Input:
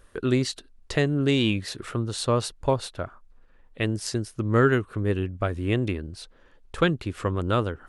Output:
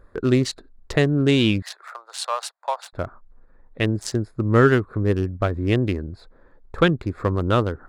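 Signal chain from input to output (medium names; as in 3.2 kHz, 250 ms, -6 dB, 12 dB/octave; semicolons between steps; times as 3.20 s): local Wiener filter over 15 samples; 1.62–2.93 s: steep high-pass 680 Hz 36 dB/octave; trim +4.5 dB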